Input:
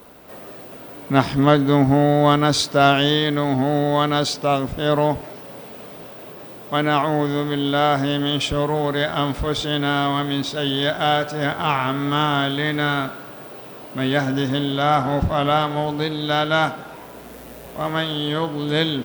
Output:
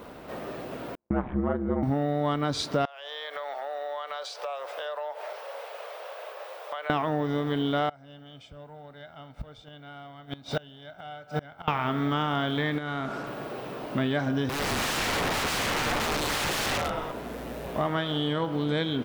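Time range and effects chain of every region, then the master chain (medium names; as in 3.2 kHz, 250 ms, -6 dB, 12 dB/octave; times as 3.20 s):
0.95–1.83 s: Gaussian low-pass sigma 4.6 samples + ring modulator 64 Hz + gate -37 dBFS, range -45 dB
2.85–6.90 s: elliptic high-pass 520 Hz, stop band 60 dB + compression 12:1, threshold -33 dBFS
7.89–11.68 s: comb 1.4 ms, depth 48% + inverted gate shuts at -14 dBFS, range -28 dB
12.78–13.27 s: median filter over 5 samples + treble shelf 9.8 kHz -5.5 dB + compression 4:1, threshold -31 dBFS
14.49–17.12 s: frequency-shifting echo 116 ms, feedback 53%, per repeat -41 Hz, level -8.5 dB + integer overflow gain 21.5 dB
whole clip: treble shelf 4.2 kHz -7 dB; compression 6:1, threshold -27 dBFS; treble shelf 9.9 kHz -6.5 dB; trim +3 dB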